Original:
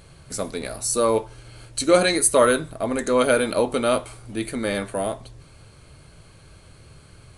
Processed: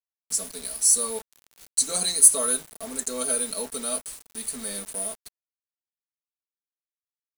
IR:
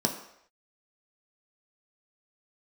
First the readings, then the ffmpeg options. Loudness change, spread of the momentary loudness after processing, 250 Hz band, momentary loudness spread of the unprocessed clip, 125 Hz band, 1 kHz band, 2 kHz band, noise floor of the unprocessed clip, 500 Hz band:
-1.0 dB, 18 LU, -14.0 dB, 14 LU, under -15 dB, -14.0 dB, -15.0 dB, -50 dBFS, -15.0 dB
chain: -filter_complex "[0:a]aecho=1:1:4.5:0.91,acrossover=split=170|2500[s0][s1][s2];[s2]aexciter=amount=8.6:drive=6.8:freq=4100[s3];[s0][s1][s3]amix=inputs=3:normalize=0,acrusher=bits=3:mix=0:aa=0.000001,volume=0.141"

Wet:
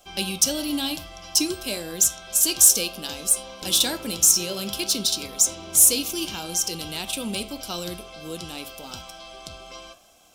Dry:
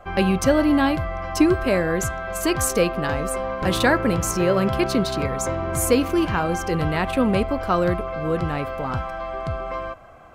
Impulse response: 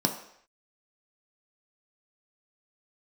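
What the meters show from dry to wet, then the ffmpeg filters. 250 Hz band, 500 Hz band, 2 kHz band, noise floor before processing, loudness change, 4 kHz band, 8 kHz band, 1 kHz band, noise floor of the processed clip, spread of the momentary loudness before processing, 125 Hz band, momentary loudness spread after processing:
-10.5 dB, -13.0 dB, -9.5 dB, -31 dBFS, +1.5 dB, +7.5 dB, +12.0 dB, -13.5 dB, -44 dBFS, 10 LU, -15.0 dB, 22 LU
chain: -filter_complex "[0:a]aexciter=amount=9.6:drive=9.7:freq=2900,flanger=delay=7.9:depth=8.6:regen=-80:speed=0.57:shape=triangular,asplit=2[s0][s1];[1:a]atrim=start_sample=2205,atrim=end_sample=3969[s2];[s1][s2]afir=irnorm=-1:irlink=0,volume=0.126[s3];[s0][s3]amix=inputs=2:normalize=0,volume=0.282"

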